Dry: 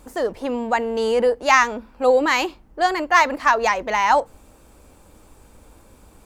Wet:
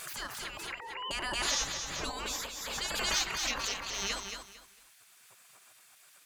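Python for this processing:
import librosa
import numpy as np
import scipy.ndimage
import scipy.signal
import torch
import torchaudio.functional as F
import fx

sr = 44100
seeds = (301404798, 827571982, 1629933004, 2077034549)

y = fx.sine_speech(x, sr, at=(0.57, 1.11))
y = fx.spec_gate(y, sr, threshold_db=-25, keep='weak')
y = fx.low_shelf(y, sr, hz=500.0, db=9.5, at=(1.61, 2.1))
y = fx.echo_feedback(y, sr, ms=226, feedback_pct=25, wet_db=-7.0)
y = fx.pre_swell(y, sr, db_per_s=29.0)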